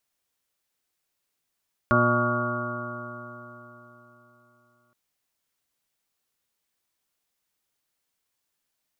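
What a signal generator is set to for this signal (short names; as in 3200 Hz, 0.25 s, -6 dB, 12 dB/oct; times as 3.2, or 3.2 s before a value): stretched partials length 3.02 s, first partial 119 Hz, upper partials 0.5/-3.5/-15.5/0.5/-15/-12/-17/2/-6/2 dB, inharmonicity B 0.0014, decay 3.68 s, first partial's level -24 dB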